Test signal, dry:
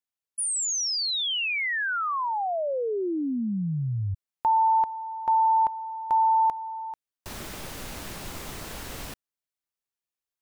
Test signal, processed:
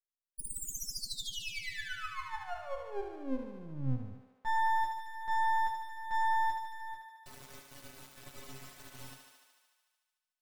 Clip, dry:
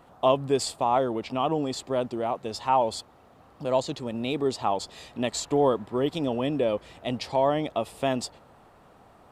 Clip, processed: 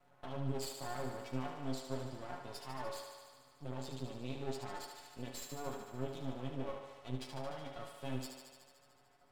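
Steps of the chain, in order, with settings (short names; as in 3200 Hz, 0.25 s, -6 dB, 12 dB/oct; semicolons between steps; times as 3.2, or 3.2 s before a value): dynamic EQ 150 Hz, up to +7 dB, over -43 dBFS, Q 0.76; limiter -20 dBFS; metallic resonator 130 Hz, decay 0.31 s, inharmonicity 0.008; half-wave rectifier; on a send: thinning echo 74 ms, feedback 76%, high-pass 280 Hz, level -6 dB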